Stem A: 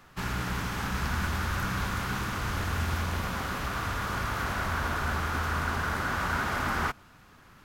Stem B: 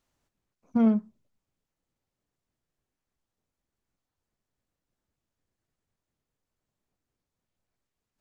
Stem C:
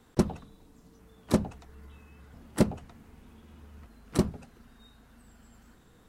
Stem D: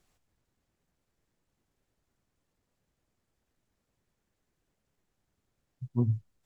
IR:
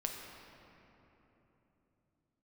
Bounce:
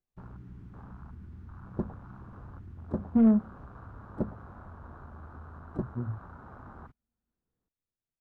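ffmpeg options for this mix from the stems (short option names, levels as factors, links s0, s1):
-filter_complex "[0:a]equalizer=f=110:t=o:w=0.4:g=4,acompressor=threshold=0.0282:ratio=5,acrusher=bits=6:mix=0:aa=0.000001,volume=0.168[s0];[1:a]asoftclip=type=tanh:threshold=0.168,adelay=2400,volume=0.75[s1];[2:a]adelay=1600,volume=0.211[s2];[3:a]acompressor=threshold=0.0282:ratio=2.5,volume=0.422,asplit=2[s3][s4];[s4]apad=whole_len=338762[s5];[s2][s5]sidechaincompress=threshold=0.00178:ratio=8:attack=23:release=1390[s6];[s0][s1][s6][s3]amix=inputs=4:normalize=0,acontrast=37,lowpass=f=1000:p=1,afwtdn=0.00501"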